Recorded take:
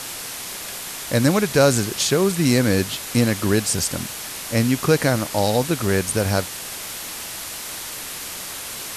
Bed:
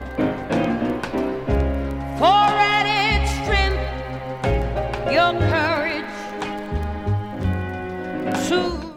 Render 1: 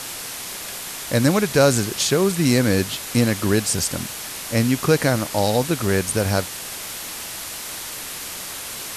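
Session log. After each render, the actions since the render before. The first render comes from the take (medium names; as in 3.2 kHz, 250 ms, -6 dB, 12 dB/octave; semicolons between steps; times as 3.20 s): no audible change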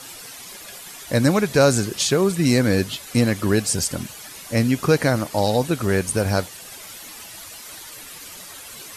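noise reduction 11 dB, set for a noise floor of -33 dBFS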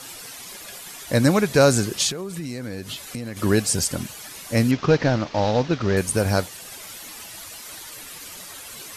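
2.10–3.37 s: compression 16:1, threshold -27 dBFS; 4.71–5.97 s: CVSD coder 32 kbps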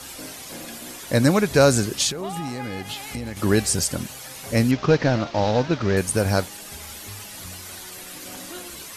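add bed -20 dB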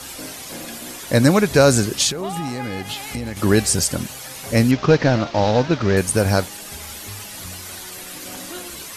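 trim +3.5 dB; peak limiter -3 dBFS, peak gain reduction 2.5 dB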